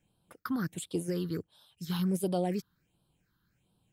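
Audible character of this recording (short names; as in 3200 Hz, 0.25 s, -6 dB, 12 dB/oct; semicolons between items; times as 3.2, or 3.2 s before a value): phasing stages 6, 1.4 Hz, lowest notch 630–1900 Hz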